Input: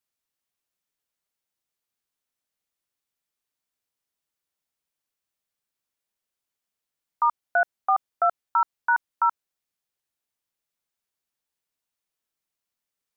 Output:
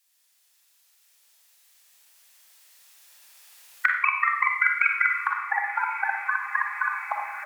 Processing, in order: gliding tape speed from 199% -> 154%; recorder AGC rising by 5.7 dB/s; elliptic high-pass 500 Hz, stop band 40 dB; tilt shelf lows -9 dB, about 1.4 kHz; band-stop 1.5 kHz, Q 25; peak limiter -5 dBFS, peak gain reduction 10.5 dB; formant shift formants -2 st; doubling 31 ms -12 dB; ever faster or slower copies 126 ms, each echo -5 st, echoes 3, each echo -6 dB; echo that smears into a reverb 1101 ms, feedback 70%, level -16 dB; Schroeder reverb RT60 0.65 s, DRR 3 dB; three bands compressed up and down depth 40%

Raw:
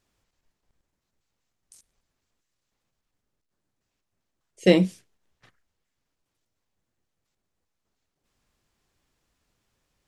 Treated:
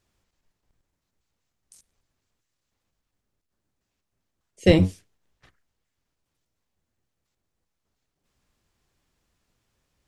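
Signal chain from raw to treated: octave divider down 1 oct, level -1 dB

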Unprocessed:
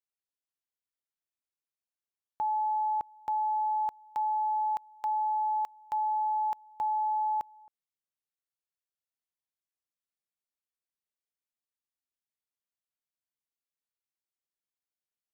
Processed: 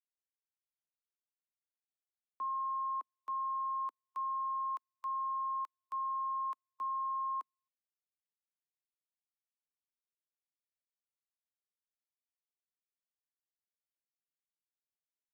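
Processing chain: frequency shift +210 Hz; upward expansion 2.5:1, over -51 dBFS; trim -7 dB

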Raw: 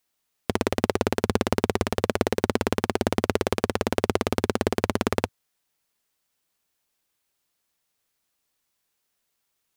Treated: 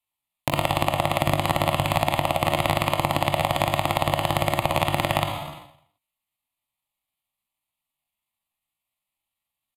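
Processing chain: resampled via 22.05 kHz; gate -55 dBFS, range -25 dB; static phaser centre 1.1 kHz, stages 6; Schroeder reverb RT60 0.64 s, combs from 29 ms, DRR 5 dB; compression 5:1, threshold -41 dBFS, peak gain reduction 18.5 dB; pitch shift +6 st; loudness maximiser +23 dB; trim -1 dB

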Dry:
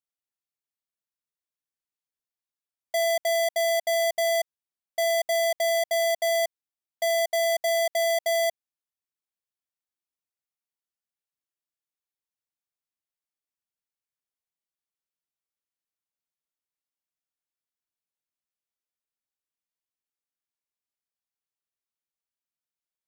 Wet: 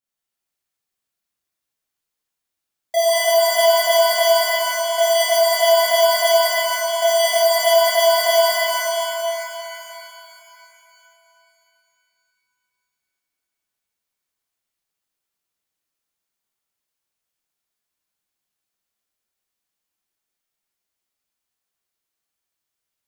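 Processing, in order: transient shaper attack +2 dB, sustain -10 dB; pitch-shifted reverb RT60 3.2 s, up +7 st, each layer -8 dB, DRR -10.5 dB

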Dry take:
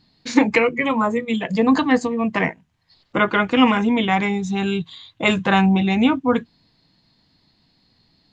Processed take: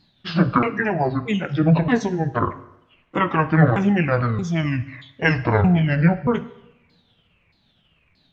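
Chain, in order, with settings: sawtooth pitch modulation -11.5 st, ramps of 627 ms; two-slope reverb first 0.8 s, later 2.4 s, from -27 dB, DRR 11.5 dB

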